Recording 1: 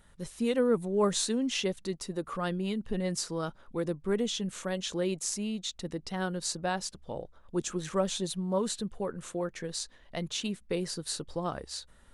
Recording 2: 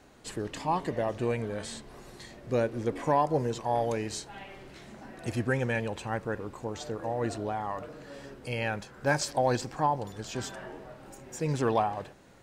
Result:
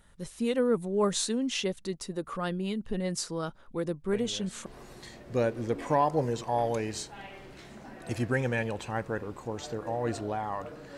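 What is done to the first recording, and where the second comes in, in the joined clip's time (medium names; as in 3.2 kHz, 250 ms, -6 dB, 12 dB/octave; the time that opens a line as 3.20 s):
recording 1
4.13 s: add recording 2 from 1.30 s 0.53 s -11 dB
4.66 s: go over to recording 2 from 1.83 s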